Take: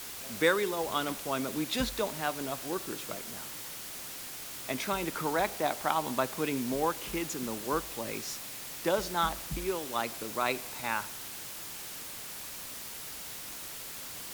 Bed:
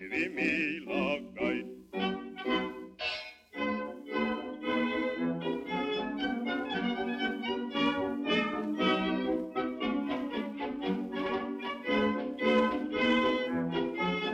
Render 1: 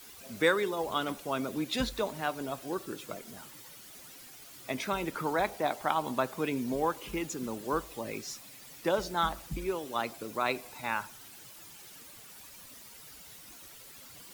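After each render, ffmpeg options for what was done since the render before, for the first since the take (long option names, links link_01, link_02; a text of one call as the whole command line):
ffmpeg -i in.wav -af "afftdn=noise_reduction=11:noise_floor=-43" out.wav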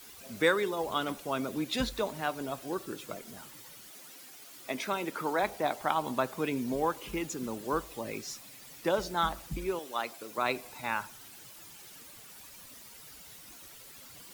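ffmpeg -i in.wav -filter_complex "[0:a]asettb=1/sr,asplit=3[link_01][link_02][link_03];[link_01]atrim=end=3.884[link_04];[link_02]atrim=start=3.88:end=5.43,asetpts=PTS-STARTPTS,afade=type=in:duration=0.004:curve=qsin,afade=type=out:start_time=1.546:duration=0.004:curve=qsin,highpass=200[link_05];[link_03]atrim=start=5.426[link_06];[link_04][link_05]acrossfade=duration=0.004:curve1=hsin:curve2=qsin[link_07];[link_07][link_06]acrossfade=duration=0.004:curve1=qsin:curve2=hsin,asettb=1/sr,asplit=3[link_08][link_09][link_10];[link_08]atrim=end=9.794[link_11];[link_09]atrim=start=9.79:end=10.38,asetpts=PTS-STARTPTS,afade=type=in:duration=0.004:curve=qsin,afade=type=out:start_time=0.586:duration=0.004:curve=qsin,highpass=frequency=490:poles=1[link_12];[link_10]atrim=start=10.376[link_13];[link_11][link_12]acrossfade=duration=0.004:curve1=hsin:curve2=qsin[link_14];[link_14][link_13]acrossfade=duration=0.004:curve1=qsin:curve2=hsin" out.wav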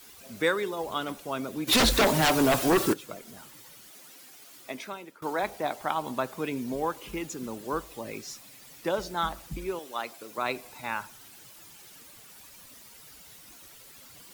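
ffmpeg -i in.wav -filter_complex "[0:a]asplit=3[link_01][link_02][link_03];[link_01]afade=type=out:start_time=1.67:duration=0.02[link_04];[link_02]aeval=exprs='0.141*sin(PI/2*5.01*val(0)/0.141)':channel_layout=same,afade=type=in:start_time=1.67:duration=0.02,afade=type=out:start_time=2.92:duration=0.02[link_05];[link_03]afade=type=in:start_time=2.92:duration=0.02[link_06];[link_04][link_05][link_06]amix=inputs=3:normalize=0,asplit=2[link_07][link_08];[link_07]atrim=end=5.22,asetpts=PTS-STARTPTS,afade=type=out:start_time=4.56:duration=0.66:silence=0.0707946[link_09];[link_08]atrim=start=5.22,asetpts=PTS-STARTPTS,afade=type=in:duration=0.004:curve=hsin:silence=0.0707946[link_10];[link_09][link_10]concat=n=2:v=0:a=1" out.wav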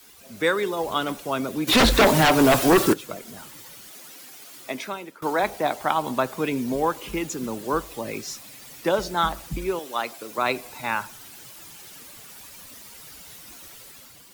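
ffmpeg -i in.wav -filter_complex "[0:a]acrossover=split=150|3400[link_01][link_02][link_03];[link_03]alimiter=limit=-23.5dB:level=0:latency=1:release=242[link_04];[link_01][link_02][link_04]amix=inputs=3:normalize=0,dynaudnorm=framelen=110:gausssize=9:maxgain=6.5dB" out.wav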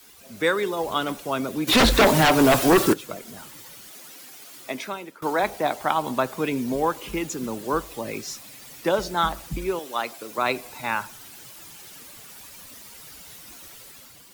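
ffmpeg -i in.wav -af anull out.wav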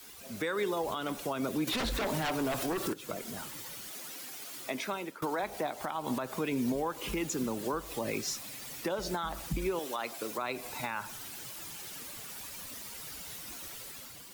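ffmpeg -i in.wav -af "acompressor=threshold=-26dB:ratio=3,alimiter=limit=-23.5dB:level=0:latency=1:release=143" out.wav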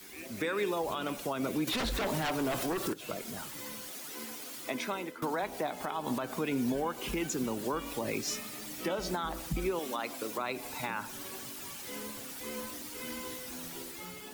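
ffmpeg -i in.wav -i bed.wav -filter_complex "[1:a]volume=-16dB[link_01];[0:a][link_01]amix=inputs=2:normalize=0" out.wav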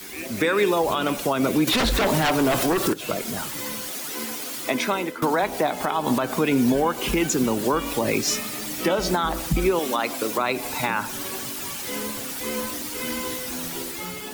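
ffmpeg -i in.wav -af "volume=11.5dB" out.wav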